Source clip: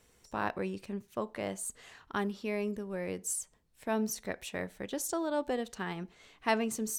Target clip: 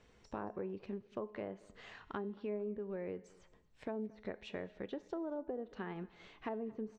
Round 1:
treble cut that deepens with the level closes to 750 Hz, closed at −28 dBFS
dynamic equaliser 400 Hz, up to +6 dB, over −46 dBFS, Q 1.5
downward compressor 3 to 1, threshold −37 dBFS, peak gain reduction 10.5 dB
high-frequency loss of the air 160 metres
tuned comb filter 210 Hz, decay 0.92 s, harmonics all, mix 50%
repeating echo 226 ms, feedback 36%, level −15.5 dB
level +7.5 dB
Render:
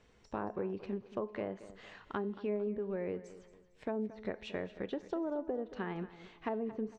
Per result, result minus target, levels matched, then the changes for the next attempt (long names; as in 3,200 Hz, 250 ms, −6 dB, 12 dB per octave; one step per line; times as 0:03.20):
echo-to-direct +7.5 dB; downward compressor: peak gain reduction −4.5 dB
change: repeating echo 226 ms, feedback 36%, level −23 dB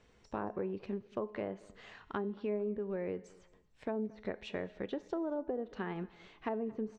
downward compressor: peak gain reduction −4.5 dB
change: downward compressor 3 to 1, threshold −43.5 dBFS, peak gain reduction 15 dB